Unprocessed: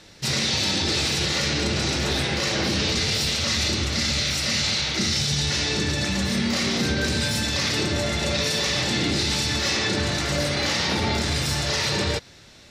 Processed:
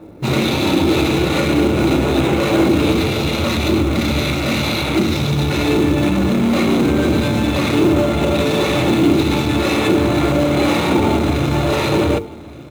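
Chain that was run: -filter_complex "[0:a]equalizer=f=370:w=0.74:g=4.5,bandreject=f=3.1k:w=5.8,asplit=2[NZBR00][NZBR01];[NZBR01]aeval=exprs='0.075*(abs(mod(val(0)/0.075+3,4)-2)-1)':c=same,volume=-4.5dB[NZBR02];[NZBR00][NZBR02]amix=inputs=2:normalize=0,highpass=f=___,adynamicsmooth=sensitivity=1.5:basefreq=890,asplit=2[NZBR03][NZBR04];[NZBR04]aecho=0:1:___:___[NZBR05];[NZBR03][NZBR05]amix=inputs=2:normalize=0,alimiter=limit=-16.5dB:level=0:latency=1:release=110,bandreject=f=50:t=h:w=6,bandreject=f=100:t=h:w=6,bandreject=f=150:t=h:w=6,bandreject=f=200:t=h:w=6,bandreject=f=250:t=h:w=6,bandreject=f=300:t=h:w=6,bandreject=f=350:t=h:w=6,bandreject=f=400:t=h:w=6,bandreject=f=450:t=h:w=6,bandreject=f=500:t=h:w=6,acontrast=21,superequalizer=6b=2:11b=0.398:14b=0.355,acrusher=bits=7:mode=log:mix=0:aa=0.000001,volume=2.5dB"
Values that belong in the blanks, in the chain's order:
49, 1170, 0.0794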